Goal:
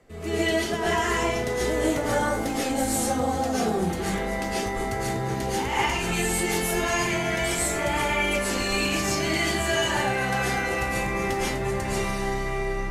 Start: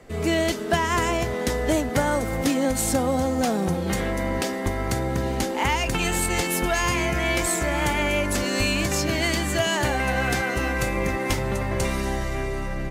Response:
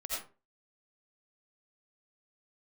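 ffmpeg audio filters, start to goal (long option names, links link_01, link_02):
-filter_complex "[0:a]asettb=1/sr,asplit=3[link_01][link_02][link_03];[link_01]atrim=end=9.474[link_04];[link_02]atrim=start=9.47:end=9.89,asetpts=PTS-STARTPTS,afade=type=in:duration=0.004:curve=qsin,afade=type=out:start_time=0.416:duration=0.004:curve=qsin,aeval=exprs='0.266*(cos(1*acos(clip(val(0)/0.266,-1,1)))-cos(1*PI/2))+0.00531*(cos(6*acos(clip(val(0)/0.266,-1,1)))-cos(6*PI/2))+0.00266*(cos(7*acos(clip(val(0)/0.266,-1,1)))-cos(7*PI/2))+0.00422*(cos(8*acos(clip(val(0)/0.266,-1,1)))-cos(8*PI/2))':channel_layout=same[link_05];[link_03]atrim=start=9.886[link_06];[link_04][link_05]acrossfade=duration=0.004:curve1=hsin:curve2=qsin[link_07];[link_07][link_06]acrossfade=duration=0.004:curve1=qsin:curve2=hsin[link_08];[1:a]atrim=start_sample=2205,asetrate=27342,aresample=44100[link_09];[link_08][link_09]afir=irnorm=-1:irlink=0,volume=-6.5dB"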